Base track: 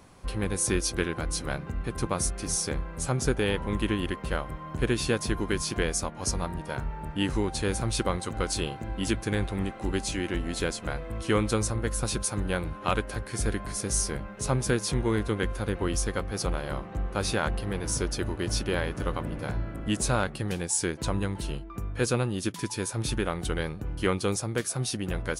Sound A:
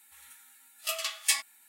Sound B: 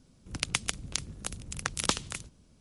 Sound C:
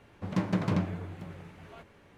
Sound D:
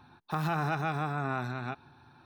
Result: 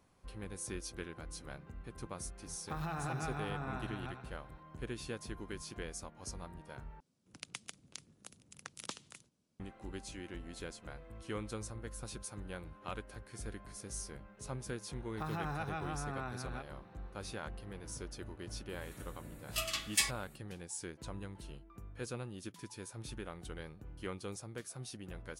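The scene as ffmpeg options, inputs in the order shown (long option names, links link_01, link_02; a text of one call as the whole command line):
ffmpeg -i bed.wav -i cue0.wav -i cue1.wav -i cue2.wav -i cue3.wav -filter_complex "[4:a]asplit=2[link_01][link_02];[0:a]volume=-16dB[link_03];[link_01]aecho=1:1:96|192|288|384|480|576|672:0.355|0.209|0.124|0.0729|0.043|0.0254|0.015[link_04];[2:a]highpass=150[link_05];[1:a]highshelf=frequency=11000:gain=-5.5[link_06];[link_03]asplit=2[link_07][link_08];[link_07]atrim=end=7.004[link_09];[link_05]atrim=end=2.6,asetpts=PTS-STARTPTS,volume=-16dB[link_10];[link_08]atrim=start=9.596[link_11];[link_04]atrim=end=2.25,asetpts=PTS-STARTPTS,volume=-10dB,afade=type=in:duration=0.004:curve=hsin,afade=type=out:start_time=2.246:duration=0.004:curve=hsin,adelay=2380[link_12];[link_02]atrim=end=2.25,asetpts=PTS-STARTPTS,volume=-9dB,afade=type=in:duration=0.004:curve=hsin,afade=type=out:start_time=2.246:duration=0.004:curve=hsin,adelay=14880[link_13];[link_06]atrim=end=1.68,asetpts=PTS-STARTPTS,volume=-3.5dB,afade=type=in:duration=0.004:curve=hsin,afade=type=out:start_time=1.676:duration=0.004:curve=hsin,adelay=18690[link_14];[link_09][link_10]acrossfade=duration=0.004:curve1=hsin:curve2=hsin[link_15];[link_15][link_11]acrossfade=duration=0.004:curve1=hsin:curve2=hsin[link_16];[link_16][link_12][link_13][link_14]amix=inputs=4:normalize=0" out.wav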